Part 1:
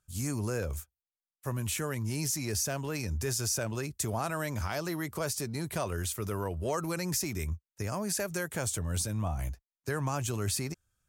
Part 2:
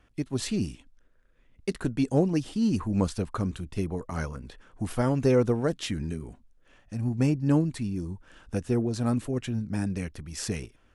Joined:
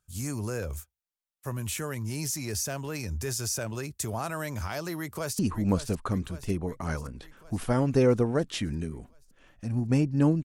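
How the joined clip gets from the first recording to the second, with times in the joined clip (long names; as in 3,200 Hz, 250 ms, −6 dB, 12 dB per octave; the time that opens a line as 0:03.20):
part 1
0:04.98–0:05.39: delay throw 560 ms, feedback 65%, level −11 dB
0:05.39: continue with part 2 from 0:02.68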